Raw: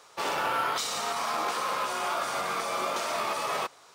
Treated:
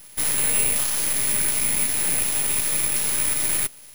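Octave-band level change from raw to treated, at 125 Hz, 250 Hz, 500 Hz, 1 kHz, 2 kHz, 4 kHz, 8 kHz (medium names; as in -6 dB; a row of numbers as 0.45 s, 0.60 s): +12.5 dB, +6.0 dB, -5.0 dB, -11.0 dB, +2.5 dB, +3.5 dB, +18.0 dB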